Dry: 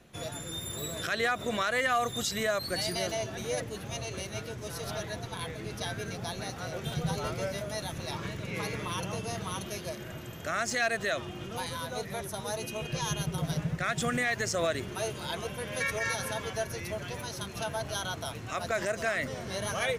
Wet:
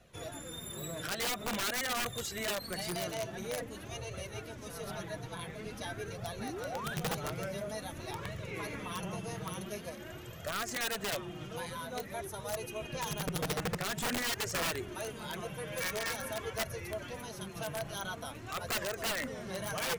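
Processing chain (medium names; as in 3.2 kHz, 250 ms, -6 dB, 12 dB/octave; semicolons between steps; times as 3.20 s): dynamic bell 4.8 kHz, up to -6 dB, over -50 dBFS, Q 1.1; flange 0.48 Hz, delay 1.4 ms, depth 5.3 ms, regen +21%; painted sound rise, 6.40–6.95 s, 200–1800 Hz -41 dBFS; integer overflow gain 28 dB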